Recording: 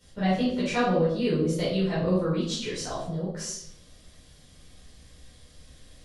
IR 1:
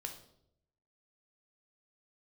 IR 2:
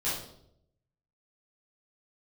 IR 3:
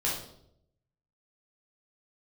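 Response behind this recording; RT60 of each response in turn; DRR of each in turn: 2; 0.75, 0.75, 0.75 s; 4.0, -10.5, -5.5 dB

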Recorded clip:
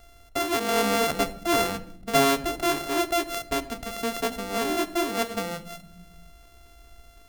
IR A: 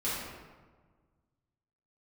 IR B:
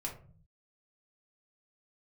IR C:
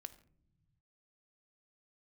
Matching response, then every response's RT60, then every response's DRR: C; 1.5 s, 0.45 s, not exponential; -11.0, -2.0, 10.0 dB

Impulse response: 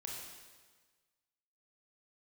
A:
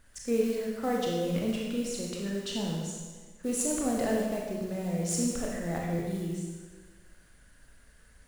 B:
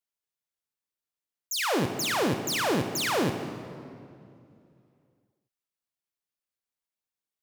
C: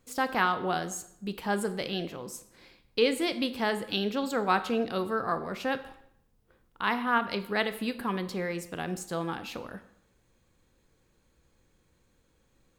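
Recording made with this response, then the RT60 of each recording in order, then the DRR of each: A; 1.4, 2.5, 0.75 s; -2.0, 7.0, 11.0 dB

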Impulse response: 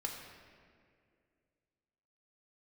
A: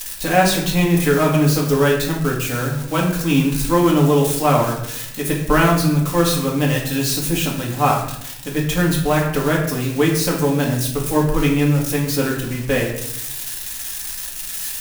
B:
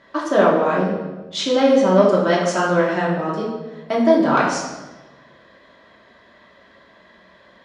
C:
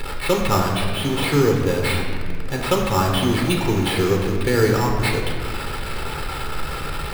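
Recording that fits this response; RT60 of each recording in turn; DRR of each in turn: C; 0.80, 1.2, 2.2 s; -3.0, -5.5, 1.0 dB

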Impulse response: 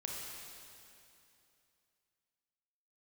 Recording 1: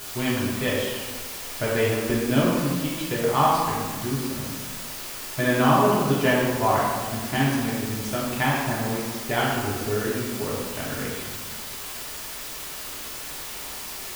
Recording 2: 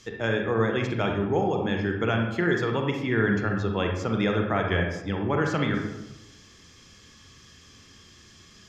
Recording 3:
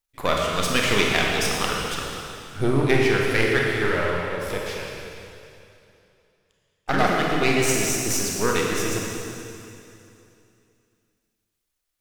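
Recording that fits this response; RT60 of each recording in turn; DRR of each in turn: 3; 1.5, 0.95, 2.8 s; -7.0, 1.5, -2.0 dB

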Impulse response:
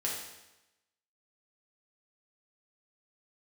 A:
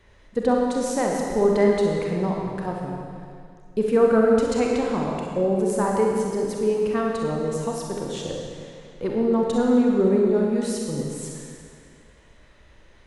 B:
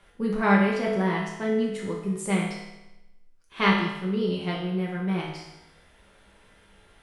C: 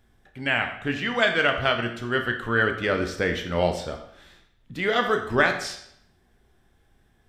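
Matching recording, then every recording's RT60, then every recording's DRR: B; 2.2, 0.95, 0.75 s; -1.5, -4.5, 4.5 dB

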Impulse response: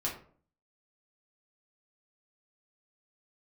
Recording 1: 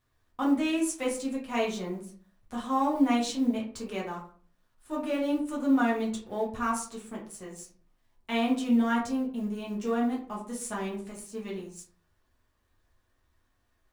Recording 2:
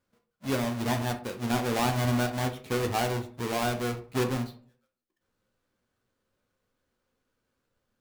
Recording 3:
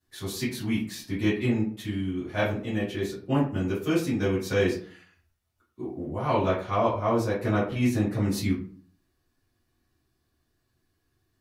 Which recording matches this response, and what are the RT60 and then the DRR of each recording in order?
1; 0.50, 0.50, 0.50 s; -4.5, 4.5, -12.0 dB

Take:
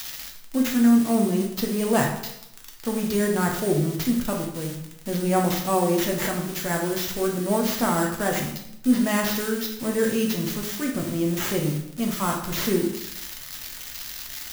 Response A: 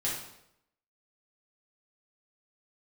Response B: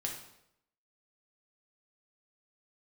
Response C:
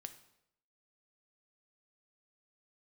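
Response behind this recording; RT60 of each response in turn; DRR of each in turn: B; 0.80, 0.80, 0.75 s; -7.0, -0.5, 8.5 dB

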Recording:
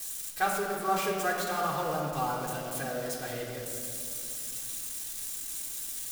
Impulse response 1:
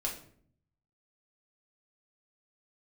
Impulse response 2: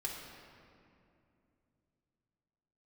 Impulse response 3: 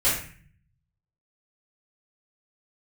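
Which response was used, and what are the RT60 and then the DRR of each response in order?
2; 0.55, 2.7, 0.45 s; -2.0, -5.0, -13.0 dB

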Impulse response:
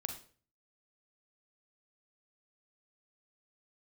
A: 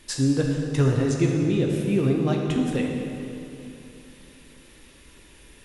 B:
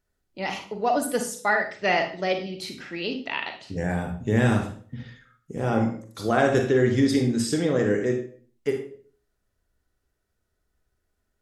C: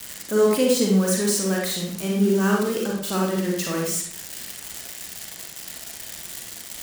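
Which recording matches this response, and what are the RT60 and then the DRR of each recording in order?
B; 2.9, 0.45, 0.60 s; 0.0, 4.5, -2.0 dB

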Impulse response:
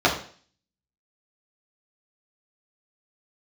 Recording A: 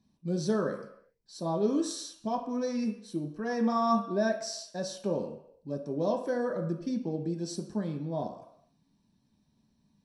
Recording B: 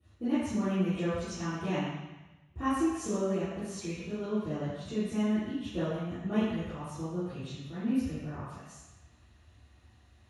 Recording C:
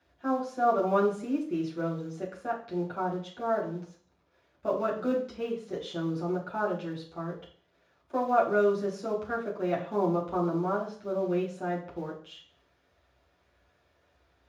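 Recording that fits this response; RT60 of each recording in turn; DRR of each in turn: C; not exponential, 1.0 s, 0.50 s; 1.5, -16.5, -5.0 dB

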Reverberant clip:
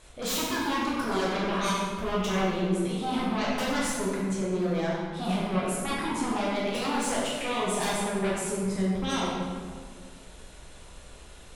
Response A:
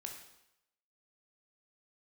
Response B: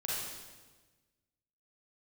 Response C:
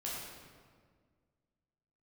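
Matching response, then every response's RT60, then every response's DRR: C; 0.85, 1.3, 1.8 s; 2.0, -6.5, -6.5 dB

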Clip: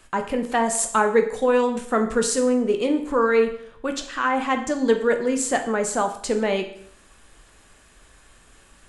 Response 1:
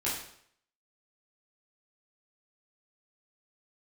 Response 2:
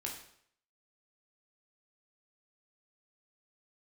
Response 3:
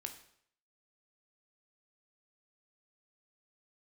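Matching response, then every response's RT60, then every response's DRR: 3; 0.65, 0.65, 0.65 s; -8.5, -1.0, 5.0 dB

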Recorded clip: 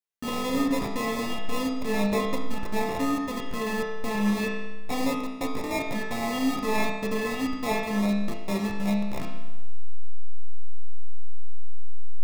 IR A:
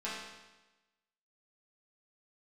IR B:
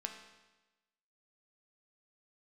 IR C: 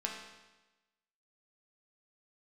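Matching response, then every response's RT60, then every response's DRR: C; 1.1, 1.1, 1.1 s; -10.0, 2.5, -2.0 dB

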